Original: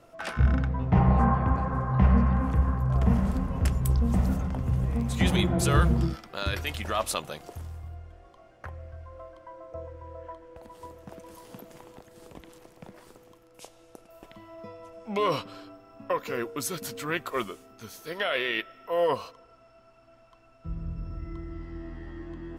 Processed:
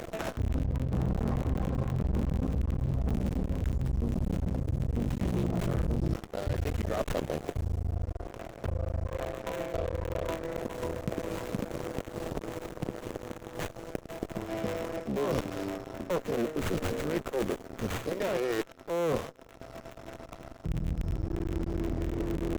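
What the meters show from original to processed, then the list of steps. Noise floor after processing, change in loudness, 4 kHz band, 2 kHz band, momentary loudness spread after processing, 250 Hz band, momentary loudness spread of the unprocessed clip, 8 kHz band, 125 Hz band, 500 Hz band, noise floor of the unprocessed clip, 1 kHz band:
-50 dBFS, -6.0 dB, -8.0 dB, -7.0 dB, 9 LU, -2.5 dB, 22 LU, -7.0 dB, -4.5 dB, +0.5 dB, -57 dBFS, -7.5 dB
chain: cycle switcher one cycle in 3, muted; band shelf 1800 Hz -13.5 dB 2.5 oct; in parallel at -1 dB: upward compressor, threshold -31 dBFS; on the sum: sample leveller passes 3; reverse; compressor 10:1, threshold -22 dBFS, peak gain reduction 14.5 dB; reverse; running maximum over 9 samples; gain -4.5 dB

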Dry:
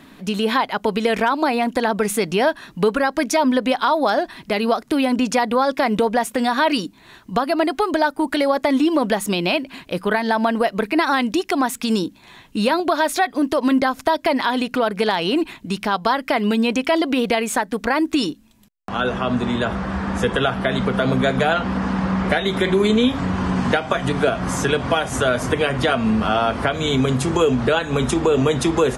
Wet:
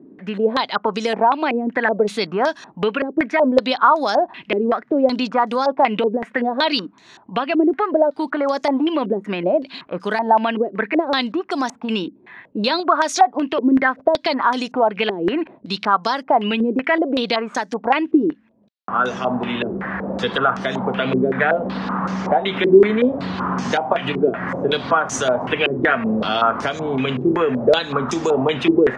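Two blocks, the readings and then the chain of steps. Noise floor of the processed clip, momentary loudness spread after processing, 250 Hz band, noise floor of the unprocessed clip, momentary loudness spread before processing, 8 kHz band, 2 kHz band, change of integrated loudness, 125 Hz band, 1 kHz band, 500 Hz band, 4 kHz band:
-51 dBFS, 7 LU, -1.0 dB, -48 dBFS, 5 LU, -4.5 dB, 0.0 dB, +0.5 dB, -5.0 dB, +2.0 dB, +1.5 dB, -0.5 dB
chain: HPF 150 Hz 12 dB/oct; stepped low-pass 5.3 Hz 380–6100 Hz; gain -2.5 dB

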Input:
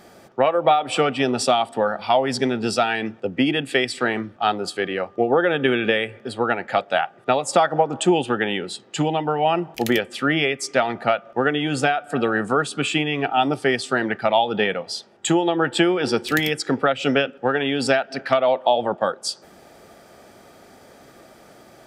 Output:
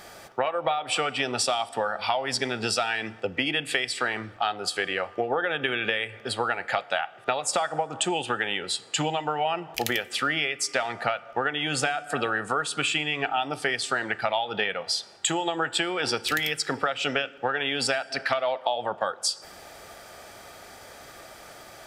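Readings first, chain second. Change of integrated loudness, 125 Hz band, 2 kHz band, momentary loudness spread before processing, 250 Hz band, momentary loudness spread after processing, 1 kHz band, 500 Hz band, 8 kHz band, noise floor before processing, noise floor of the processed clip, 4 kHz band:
-5.5 dB, -9.0 dB, -3.0 dB, 5 LU, -12.0 dB, 12 LU, -6.0 dB, -9.0 dB, +1.0 dB, -49 dBFS, -47 dBFS, -1.0 dB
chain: bell 240 Hz -13 dB 2.4 oct; compressor 5:1, threshold -30 dBFS, peak gain reduction 13 dB; FDN reverb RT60 1.1 s, high-frequency decay 0.85×, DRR 18.5 dB; gain +6.5 dB

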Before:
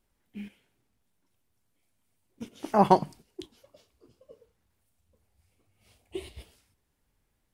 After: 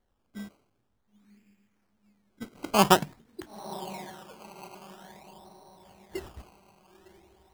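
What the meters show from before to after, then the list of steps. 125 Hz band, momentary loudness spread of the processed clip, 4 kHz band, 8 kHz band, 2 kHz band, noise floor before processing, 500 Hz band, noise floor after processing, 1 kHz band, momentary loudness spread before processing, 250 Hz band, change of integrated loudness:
0.0 dB, 25 LU, +13.5 dB, n/a, +11.0 dB, -76 dBFS, -0.5 dB, -74 dBFS, -1.0 dB, 22 LU, 0.0 dB, -2.0 dB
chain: diffused feedback echo 0.983 s, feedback 47%, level -16 dB; decimation with a swept rate 17×, swing 100% 0.49 Hz

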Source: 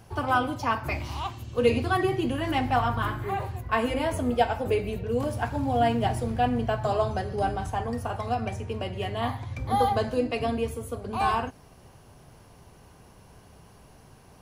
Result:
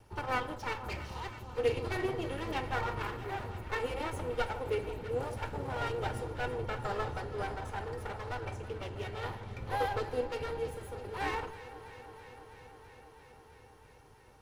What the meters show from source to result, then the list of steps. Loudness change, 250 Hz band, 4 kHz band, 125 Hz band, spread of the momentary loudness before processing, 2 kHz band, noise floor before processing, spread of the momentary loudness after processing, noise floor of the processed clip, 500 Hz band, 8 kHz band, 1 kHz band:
-9.0 dB, -14.0 dB, -8.0 dB, -9.5 dB, 8 LU, -6.0 dB, -53 dBFS, 16 LU, -58 dBFS, -8.0 dB, -8.0 dB, -10.5 dB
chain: minimum comb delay 2.2 ms; high shelf 6700 Hz -4 dB; echo with dull and thin repeats by turns 0.164 s, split 1200 Hz, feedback 89%, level -13.5 dB; gain -7.5 dB

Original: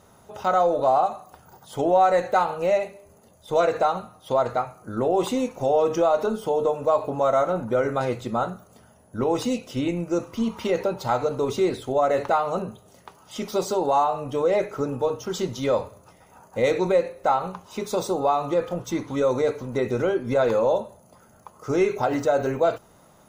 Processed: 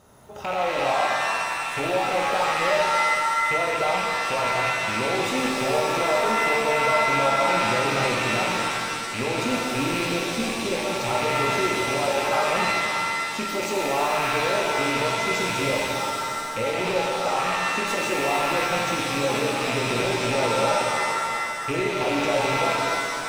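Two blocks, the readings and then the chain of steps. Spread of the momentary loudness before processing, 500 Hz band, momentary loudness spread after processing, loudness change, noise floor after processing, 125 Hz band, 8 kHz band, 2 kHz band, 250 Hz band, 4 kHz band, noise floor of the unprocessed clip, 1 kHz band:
8 LU, -3.0 dB, 5 LU, +1.0 dB, -29 dBFS, +0.5 dB, +10.0 dB, +13.0 dB, -1.5 dB, +12.0 dB, -55 dBFS, +2.0 dB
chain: rattling part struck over -41 dBFS, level -17 dBFS; limiter -18.5 dBFS, peak gain reduction 10 dB; shimmer reverb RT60 2.4 s, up +7 st, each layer -2 dB, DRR -1.5 dB; gain -1.5 dB

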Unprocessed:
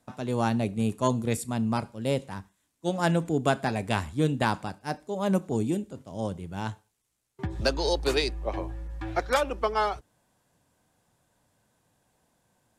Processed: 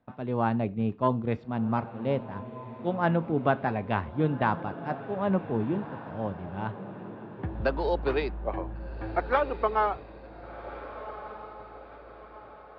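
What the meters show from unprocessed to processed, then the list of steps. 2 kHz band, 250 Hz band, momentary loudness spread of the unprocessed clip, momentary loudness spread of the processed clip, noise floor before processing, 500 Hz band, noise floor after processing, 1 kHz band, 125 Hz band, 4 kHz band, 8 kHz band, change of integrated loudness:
-1.5 dB, -1.0 dB, 11 LU, 17 LU, -76 dBFS, 0.0 dB, -48 dBFS, +1.0 dB, -1.0 dB, -12.5 dB, under -35 dB, -1.0 dB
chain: dynamic EQ 1100 Hz, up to +4 dB, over -36 dBFS, Q 0.9; Gaussian blur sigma 3.1 samples; diffused feedback echo 1.483 s, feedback 45%, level -13 dB; gain -1.5 dB

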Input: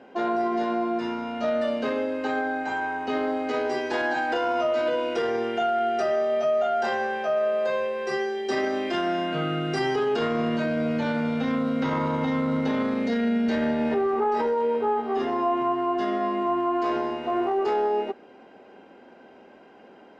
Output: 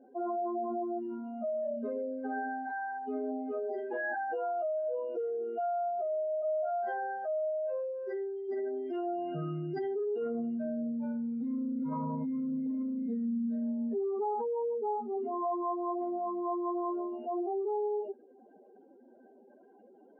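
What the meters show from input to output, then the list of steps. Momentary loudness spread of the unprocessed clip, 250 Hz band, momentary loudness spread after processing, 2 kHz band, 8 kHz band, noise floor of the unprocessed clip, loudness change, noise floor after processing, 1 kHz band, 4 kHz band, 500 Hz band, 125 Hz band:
4 LU, -8.0 dB, 4 LU, -13.0 dB, n/a, -50 dBFS, -9.0 dB, -59 dBFS, -9.5 dB, under -30 dB, -8.5 dB, -10.0 dB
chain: spectral contrast raised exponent 3; gain -8 dB

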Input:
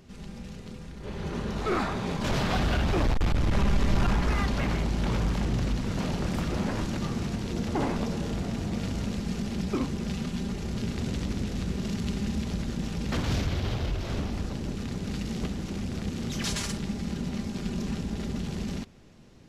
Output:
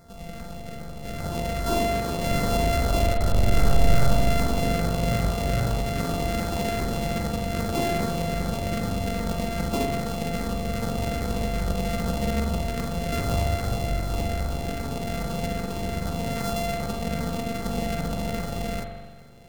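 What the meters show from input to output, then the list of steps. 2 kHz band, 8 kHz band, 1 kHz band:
+3.5 dB, +5.0 dB, +7.0 dB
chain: sample sorter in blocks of 64 samples; LFO notch saw down 2.5 Hz 690–3100 Hz; spring tank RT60 1.5 s, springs 42 ms, chirp 60 ms, DRR 2 dB; gain +1 dB

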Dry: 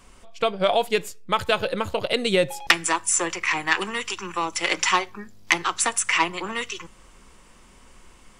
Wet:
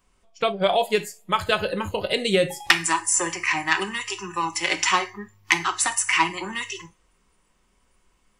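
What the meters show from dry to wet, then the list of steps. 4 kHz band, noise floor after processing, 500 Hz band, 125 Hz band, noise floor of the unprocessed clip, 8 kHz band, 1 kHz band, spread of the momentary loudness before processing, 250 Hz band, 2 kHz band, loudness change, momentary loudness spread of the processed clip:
+0.5 dB, -66 dBFS, -0.5 dB, +1.5 dB, -52 dBFS, +0.5 dB, +0.5 dB, 9 LU, +0.5 dB, +0.5 dB, +0.5 dB, 10 LU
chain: two-slope reverb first 0.42 s, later 2.1 s, from -25 dB, DRR 8 dB; spectral noise reduction 15 dB

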